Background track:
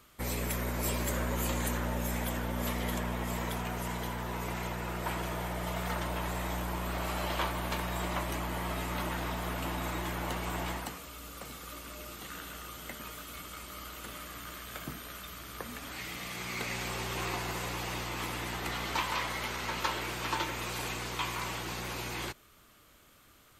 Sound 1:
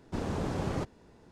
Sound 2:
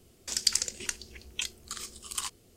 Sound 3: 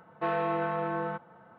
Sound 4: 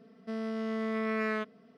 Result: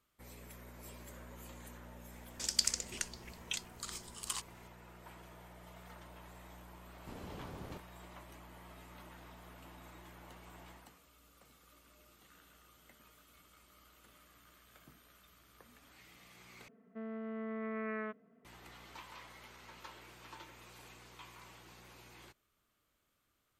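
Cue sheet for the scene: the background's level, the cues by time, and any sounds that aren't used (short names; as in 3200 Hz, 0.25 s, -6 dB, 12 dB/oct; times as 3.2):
background track -19.5 dB
2.12 add 2 -5.5 dB
6.94 add 1 -15.5 dB
16.68 replace with 4 -8 dB + LPF 2300 Hz 24 dB/oct
not used: 3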